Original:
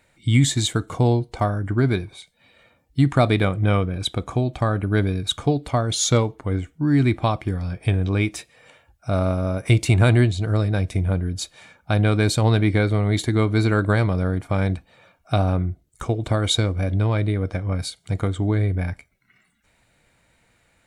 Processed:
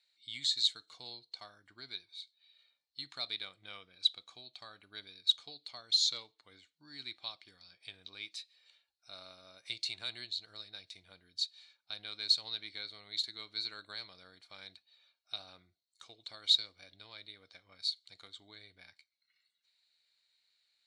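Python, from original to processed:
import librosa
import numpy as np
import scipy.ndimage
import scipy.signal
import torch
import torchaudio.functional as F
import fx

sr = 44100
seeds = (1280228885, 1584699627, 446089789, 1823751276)

y = fx.bandpass_q(x, sr, hz=4200.0, q=9.3)
y = y * librosa.db_to_amplitude(3.5)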